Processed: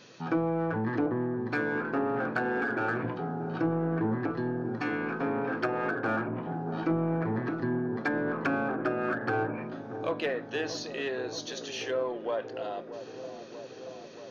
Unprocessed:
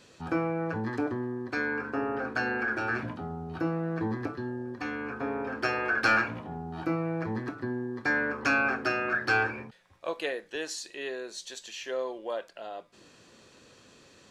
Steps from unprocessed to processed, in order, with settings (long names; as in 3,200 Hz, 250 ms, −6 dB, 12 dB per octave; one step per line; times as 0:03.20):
treble cut that deepens with the level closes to 780 Hz, closed at −24.5 dBFS
brick-wall band-pass 100–6,800 Hz
in parallel at −6 dB: soft clipping −33.5 dBFS, distortion −9 dB
on the sum: delay with a low-pass on its return 631 ms, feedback 76%, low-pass 830 Hz, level −10 dB